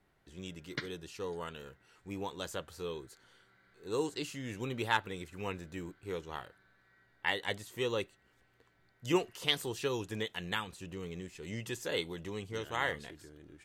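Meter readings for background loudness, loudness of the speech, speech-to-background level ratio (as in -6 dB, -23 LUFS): -44.5 LUFS, -37.5 LUFS, 7.0 dB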